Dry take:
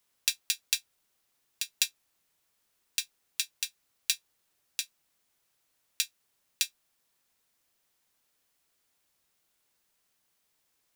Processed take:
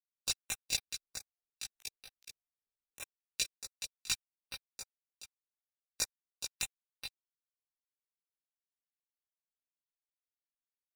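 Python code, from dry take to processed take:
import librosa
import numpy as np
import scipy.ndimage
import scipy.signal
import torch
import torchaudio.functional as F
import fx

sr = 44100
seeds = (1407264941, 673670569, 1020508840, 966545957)

y = fx.bin_expand(x, sr, power=2.0)
y = scipy.signal.sosfilt(scipy.signal.butter(4, 11000.0, 'lowpass', fs=sr, output='sos'), y)
y = fx.peak_eq(y, sr, hz=130.0, db=-14.0, octaves=2.2)
y = fx.notch(y, sr, hz=3300.0, q=7.0)
y = fx.over_compress(y, sr, threshold_db=-44.0, ratio=-0.5, at=(0.73, 3.02), fade=0.02)
y = fx.leveller(y, sr, passes=5)
y = fx.level_steps(y, sr, step_db=10)
y = fx.chorus_voices(y, sr, voices=6, hz=0.69, base_ms=18, depth_ms=1.4, mix_pct=55)
y = y + 10.0 ** (-8.0 / 20.0) * np.pad(y, (int(424 * sr / 1000.0), 0))[:len(y)]
y = fx.filter_held_notch(y, sr, hz=6.5, low_hz=370.0, high_hz=7100.0)
y = y * librosa.db_to_amplitude(-6.0)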